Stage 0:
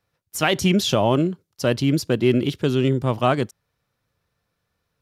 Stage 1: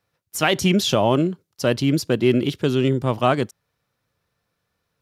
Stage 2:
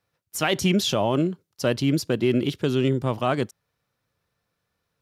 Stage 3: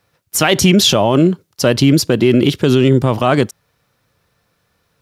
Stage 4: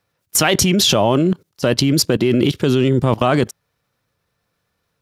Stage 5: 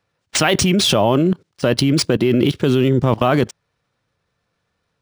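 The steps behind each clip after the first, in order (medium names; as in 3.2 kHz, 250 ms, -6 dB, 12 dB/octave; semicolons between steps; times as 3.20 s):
bass shelf 69 Hz -7.5 dB; trim +1 dB
peak limiter -8.5 dBFS, peak gain reduction 4 dB; trim -2.5 dB
loudness maximiser +15 dB; trim -1 dB
level held to a coarse grid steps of 19 dB; trim +4.5 dB
decimation joined by straight lines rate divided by 3×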